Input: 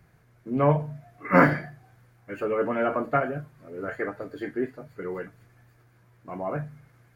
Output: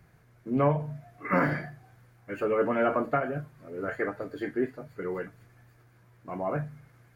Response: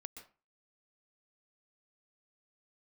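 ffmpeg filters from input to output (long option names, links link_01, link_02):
-af "alimiter=limit=-14.5dB:level=0:latency=1:release=190"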